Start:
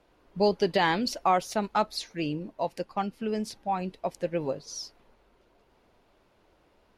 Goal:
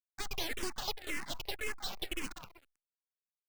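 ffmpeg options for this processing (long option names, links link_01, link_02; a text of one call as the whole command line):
ffmpeg -i in.wav -filter_complex "[0:a]highpass=frequency=190:width_type=q:width=0.5412,highpass=frequency=190:width_type=q:width=1.307,lowpass=frequency=2300:width_type=q:width=0.5176,lowpass=frequency=2300:width_type=q:width=0.7071,lowpass=frequency=2300:width_type=q:width=1.932,afreqshift=210,asetrate=88200,aresample=44100,asplit=5[link_01][link_02][link_03][link_04][link_05];[link_02]adelay=191,afreqshift=-46,volume=-11.5dB[link_06];[link_03]adelay=382,afreqshift=-92,volume=-18.8dB[link_07];[link_04]adelay=573,afreqshift=-138,volume=-26.2dB[link_08];[link_05]adelay=764,afreqshift=-184,volume=-33.5dB[link_09];[link_01][link_06][link_07][link_08][link_09]amix=inputs=5:normalize=0,acompressor=threshold=-35dB:ratio=2,afwtdn=0.01,acrusher=bits=7:dc=4:mix=0:aa=0.000001,aeval=exprs='abs(val(0))':channel_layout=same,asplit=2[link_10][link_11];[link_11]afreqshift=-1.9[link_12];[link_10][link_12]amix=inputs=2:normalize=1,volume=1dB" out.wav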